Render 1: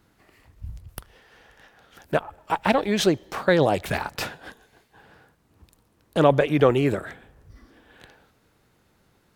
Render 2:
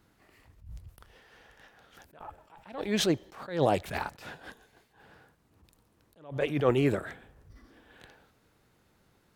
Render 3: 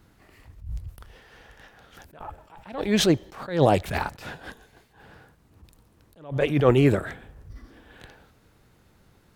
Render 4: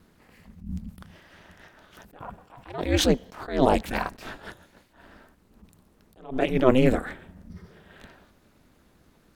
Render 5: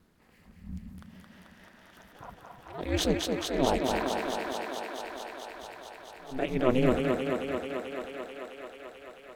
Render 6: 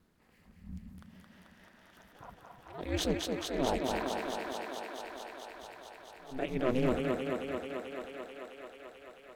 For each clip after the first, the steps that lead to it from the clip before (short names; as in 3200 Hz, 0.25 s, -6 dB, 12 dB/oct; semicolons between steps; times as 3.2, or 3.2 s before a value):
attack slew limiter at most 130 dB/s; gain -3.5 dB
low shelf 130 Hz +7.5 dB; gain +5.5 dB
ring modulator 130 Hz; gain +2 dB
thinning echo 0.219 s, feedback 84%, high-pass 180 Hz, level -3 dB; gain -6.5 dB
hard clip -15.5 dBFS, distortion -20 dB; gain -4.5 dB